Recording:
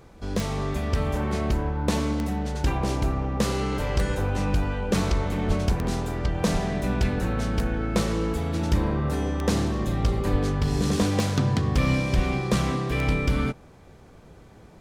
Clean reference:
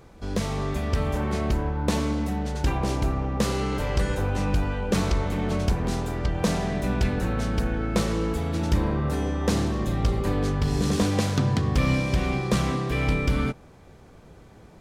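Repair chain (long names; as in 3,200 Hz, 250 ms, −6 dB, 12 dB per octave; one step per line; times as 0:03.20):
click removal
high-pass at the plosives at 0:05.47/0:06.52/0:10.31/0:12.15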